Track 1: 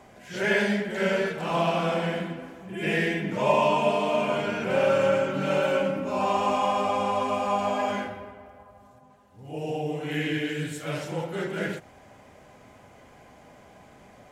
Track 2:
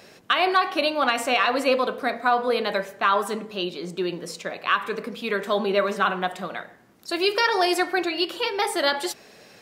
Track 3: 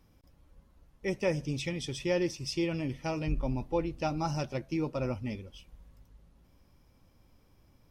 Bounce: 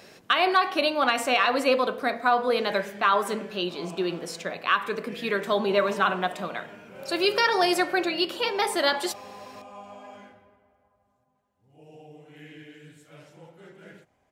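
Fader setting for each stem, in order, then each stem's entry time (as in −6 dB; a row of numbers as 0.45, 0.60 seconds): −18.0 dB, −1.0 dB, muted; 2.25 s, 0.00 s, muted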